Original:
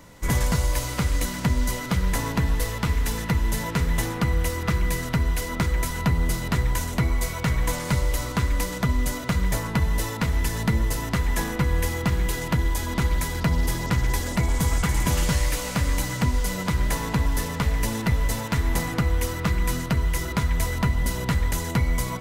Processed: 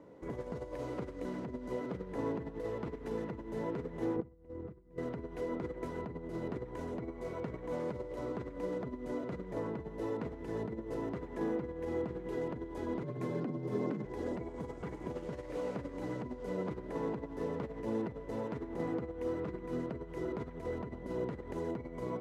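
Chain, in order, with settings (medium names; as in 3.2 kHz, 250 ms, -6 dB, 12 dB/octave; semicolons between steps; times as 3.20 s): 4.16–4.98 s: tilt EQ -3 dB/octave; compressor with a negative ratio -25 dBFS, ratio -1; 13.03–14.05 s: frequency shift +83 Hz; band-pass filter 400 Hz, Q 2.2; trim -1.5 dB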